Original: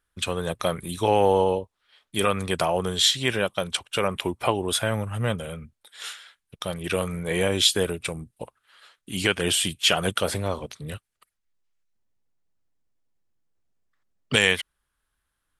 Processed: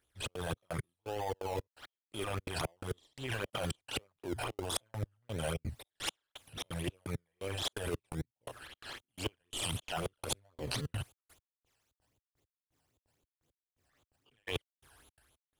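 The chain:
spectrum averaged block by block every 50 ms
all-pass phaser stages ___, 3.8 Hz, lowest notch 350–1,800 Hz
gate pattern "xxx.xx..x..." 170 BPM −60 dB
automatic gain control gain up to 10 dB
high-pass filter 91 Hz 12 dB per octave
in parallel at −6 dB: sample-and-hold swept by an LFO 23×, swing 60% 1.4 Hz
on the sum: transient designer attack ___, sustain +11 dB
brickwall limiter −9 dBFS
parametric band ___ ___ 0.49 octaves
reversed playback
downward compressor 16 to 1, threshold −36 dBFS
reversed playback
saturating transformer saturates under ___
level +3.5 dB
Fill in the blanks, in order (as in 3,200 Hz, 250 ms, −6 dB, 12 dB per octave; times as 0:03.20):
12, −10 dB, 190 Hz, −13 dB, 380 Hz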